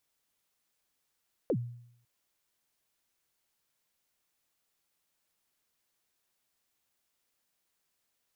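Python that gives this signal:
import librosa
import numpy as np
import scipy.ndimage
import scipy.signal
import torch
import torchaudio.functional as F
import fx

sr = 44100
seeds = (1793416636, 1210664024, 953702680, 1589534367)

y = fx.drum_kick(sr, seeds[0], length_s=0.55, level_db=-23.5, start_hz=590.0, end_hz=120.0, sweep_ms=66.0, decay_s=0.7, click=False)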